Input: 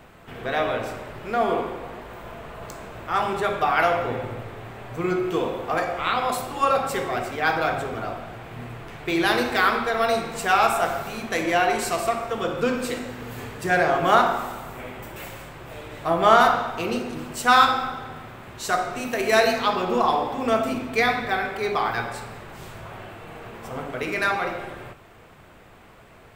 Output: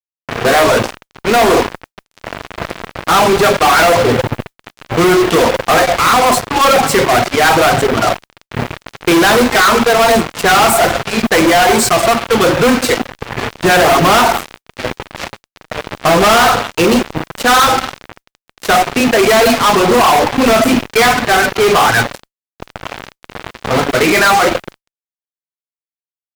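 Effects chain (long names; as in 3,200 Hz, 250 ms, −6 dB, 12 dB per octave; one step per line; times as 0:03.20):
high-pass filter 75 Hz 6 dB per octave
low-pass that shuts in the quiet parts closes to 1,500 Hz, open at −18 dBFS
reverb reduction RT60 1.3 s
dynamic equaliser 3,700 Hz, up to −6 dB, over −38 dBFS, Q 0.87
fuzz pedal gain 38 dB, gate −37 dBFS
noise that follows the level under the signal 27 dB
level +6 dB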